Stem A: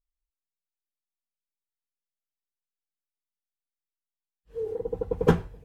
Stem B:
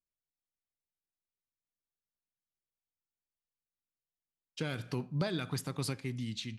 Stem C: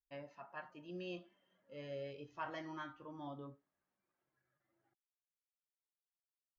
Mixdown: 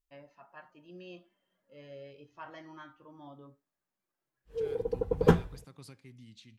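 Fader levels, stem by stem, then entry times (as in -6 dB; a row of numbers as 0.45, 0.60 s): -1.5, -15.0, -2.5 dB; 0.00, 0.00, 0.00 s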